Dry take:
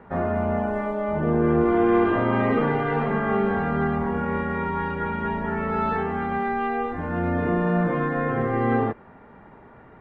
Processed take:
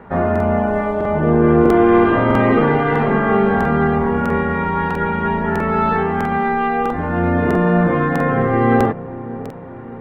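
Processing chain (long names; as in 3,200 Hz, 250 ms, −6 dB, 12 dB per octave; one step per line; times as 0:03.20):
delay with a low-pass on its return 589 ms, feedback 54%, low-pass 760 Hz, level −14 dB
regular buffer underruns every 0.65 s, samples 2,048, repeat, from 0:00.31
level +7.5 dB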